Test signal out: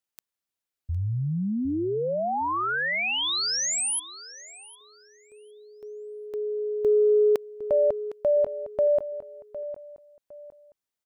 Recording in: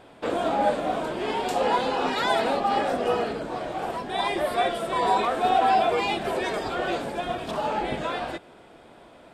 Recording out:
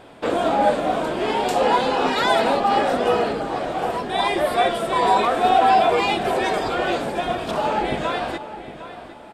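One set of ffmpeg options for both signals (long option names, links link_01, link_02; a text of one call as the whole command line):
ffmpeg -i in.wav -filter_complex "[0:a]acontrast=28,asplit=2[link_01][link_02];[link_02]adelay=758,lowpass=frequency=3800:poles=1,volume=-13dB,asplit=2[link_03][link_04];[link_04]adelay=758,lowpass=frequency=3800:poles=1,volume=0.31,asplit=2[link_05][link_06];[link_06]adelay=758,lowpass=frequency=3800:poles=1,volume=0.31[link_07];[link_01][link_03][link_05][link_07]amix=inputs=4:normalize=0" out.wav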